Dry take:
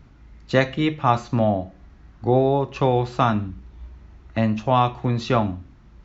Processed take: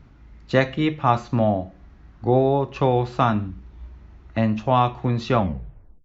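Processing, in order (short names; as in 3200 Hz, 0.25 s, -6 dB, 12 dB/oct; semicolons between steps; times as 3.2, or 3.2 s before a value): tape stop at the end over 0.67 s; high shelf 6000 Hz -7 dB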